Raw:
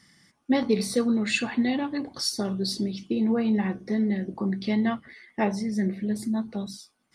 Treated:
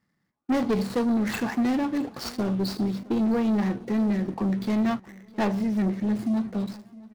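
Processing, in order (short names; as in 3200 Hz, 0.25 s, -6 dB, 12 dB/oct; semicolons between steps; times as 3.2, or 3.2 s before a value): median filter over 15 samples; sample leveller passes 3; feedback echo 0.663 s, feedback 48%, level -22 dB; gain -6.5 dB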